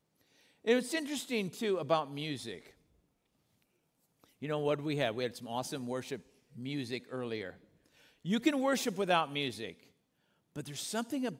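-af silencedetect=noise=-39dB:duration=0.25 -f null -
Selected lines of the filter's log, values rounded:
silence_start: 0.00
silence_end: 0.66 | silence_duration: 0.66
silence_start: 2.57
silence_end: 4.42 | silence_duration: 1.85
silence_start: 6.16
silence_end: 6.58 | silence_duration: 0.42
silence_start: 7.50
silence_end: 8.25 | silence_duration: 0.76
silence_start: 9.71
silence_end: 10.56 | silence_duration: 0.85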